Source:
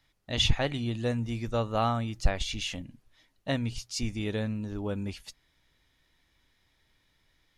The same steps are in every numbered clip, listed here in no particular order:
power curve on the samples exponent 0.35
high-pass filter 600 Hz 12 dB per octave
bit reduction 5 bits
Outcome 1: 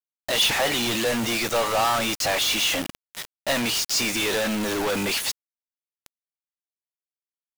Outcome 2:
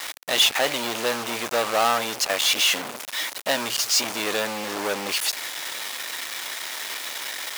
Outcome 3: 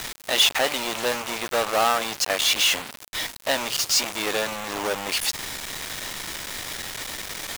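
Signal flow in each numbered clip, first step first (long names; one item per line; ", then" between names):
high-pass filter, then power curve on the samples, then bit reduction
power curve on the samples, then bit reduction, then high-pass filter
power curve on the samples, then high-pass filter, then bit reduction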